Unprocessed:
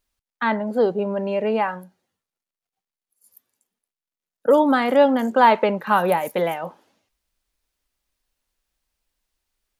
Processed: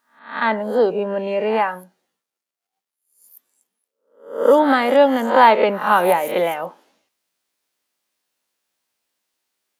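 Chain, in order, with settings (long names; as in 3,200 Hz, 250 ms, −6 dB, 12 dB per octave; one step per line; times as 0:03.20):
peak hold with a rise ahead of every peak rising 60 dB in 0.45 s
high-pass filter 230 Hz 12 dB per octave
level +2 dB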